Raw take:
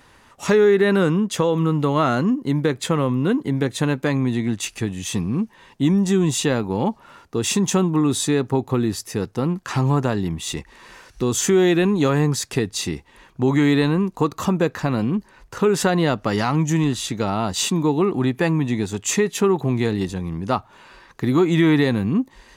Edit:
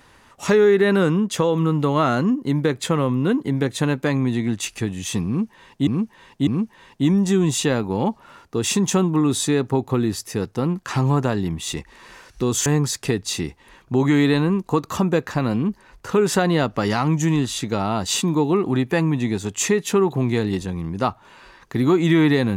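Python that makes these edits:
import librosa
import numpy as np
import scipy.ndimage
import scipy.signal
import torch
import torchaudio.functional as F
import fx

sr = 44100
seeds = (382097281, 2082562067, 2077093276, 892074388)

y = fx.edit(x, sr, fx.repeat(start_s=5.27, length_s=0.6, count=3),
    fx.cut(start_s=11.46, length_s=0.68), tone=tone)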